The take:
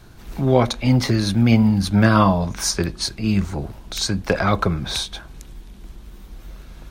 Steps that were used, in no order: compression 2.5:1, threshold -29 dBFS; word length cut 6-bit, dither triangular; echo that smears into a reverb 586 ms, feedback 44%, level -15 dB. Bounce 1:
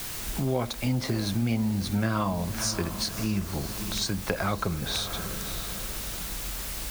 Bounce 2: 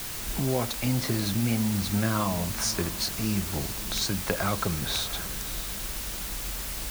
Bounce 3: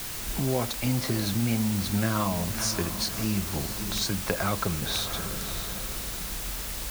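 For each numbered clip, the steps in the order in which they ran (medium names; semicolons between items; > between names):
word length cut > echo that smears into a reverb > compression; compression > word length cut > echo that smears into a reverb; echo that smears into a reverb > compression > word length cut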